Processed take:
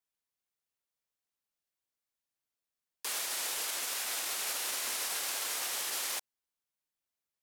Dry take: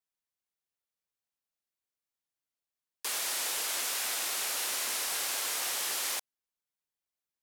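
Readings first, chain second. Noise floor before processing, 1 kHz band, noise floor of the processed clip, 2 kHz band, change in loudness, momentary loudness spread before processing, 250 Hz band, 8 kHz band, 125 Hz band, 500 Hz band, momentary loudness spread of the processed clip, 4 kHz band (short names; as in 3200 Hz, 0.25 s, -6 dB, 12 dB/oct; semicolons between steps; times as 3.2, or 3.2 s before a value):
under -85 dBFS, -2.5 dB, under -85 dBFS, -2.5 dB, -2.5 dB, 3 LU, -2.5 dB, -2.5 dB, n/a, -2.5 dB, 3 LU, -2.5 dB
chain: limiter -25.5 dBFS, peak gain reduction 5.5 dB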